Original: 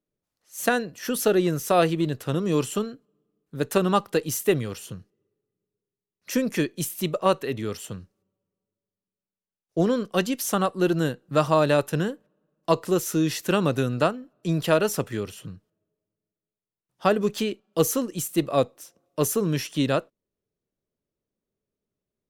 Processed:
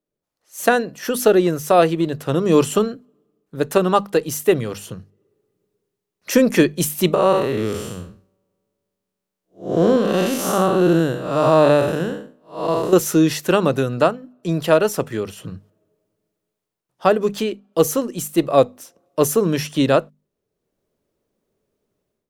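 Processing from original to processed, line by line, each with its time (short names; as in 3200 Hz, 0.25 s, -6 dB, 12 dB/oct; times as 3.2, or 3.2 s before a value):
7.14–12.93 time blur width 0.207 s
whole clip: bell 640 Hz +5 dB 2.4 oct; notches 50/100/150/200/250 Hz; AGC; gain -1 dB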